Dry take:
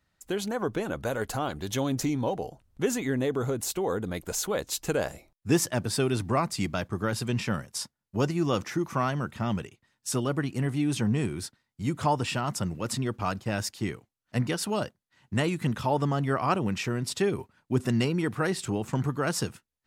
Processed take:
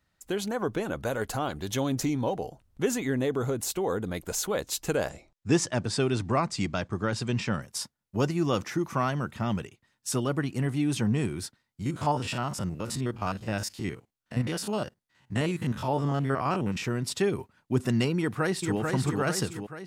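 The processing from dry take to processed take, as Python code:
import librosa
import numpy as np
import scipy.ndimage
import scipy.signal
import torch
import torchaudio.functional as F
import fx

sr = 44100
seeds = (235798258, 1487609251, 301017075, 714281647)

y = fx.lowpass(x, sr, hz=8200.0, slope=24, at=(5.09, 7.62))
y = fx.spec_steps(y, sr, hold_ms=50, at=(11.82, 16.82), fade=0.02)
y = fx.echo_throw(y, sr, start_s=18.18, length_s=0.6, ms=440, feedback_pct=55, wet_db=-3.5)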